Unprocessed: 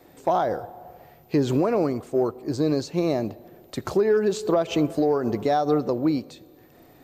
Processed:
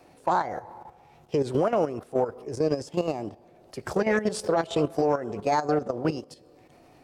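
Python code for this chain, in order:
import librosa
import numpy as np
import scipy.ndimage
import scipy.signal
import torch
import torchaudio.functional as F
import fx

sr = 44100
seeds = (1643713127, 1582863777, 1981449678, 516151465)

y = fx.formant_shift(x, sr, semitones=3)
y = fx.level_steps(y, sr, step_db=11)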